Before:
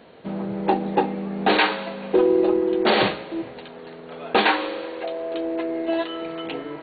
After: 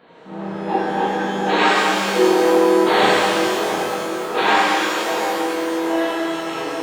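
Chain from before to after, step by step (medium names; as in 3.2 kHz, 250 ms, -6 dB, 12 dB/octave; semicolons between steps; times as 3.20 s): bass shelf 93 Hz -12 dB; transient shaper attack -8 dB, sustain -2 dB; peaking EQ 1.2 kHz +6 dB 1.3 oct; feedback echo behind a low-pass 694 ms, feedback 54%, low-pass 1.1 kHz, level -7 dB; pitch-shifted reverb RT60 2.6 s, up +12 st, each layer -8 dB, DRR -8.5 dB; trim -5.5 dB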